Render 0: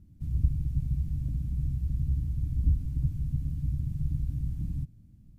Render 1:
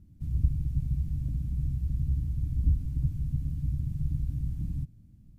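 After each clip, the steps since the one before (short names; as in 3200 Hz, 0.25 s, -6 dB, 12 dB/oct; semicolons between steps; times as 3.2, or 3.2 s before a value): nothing audible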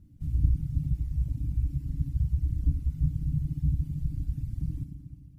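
FDN reverb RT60 3.1 s, high-frequency decay 0.95×, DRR -1 dB; reverb removal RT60 1.9 s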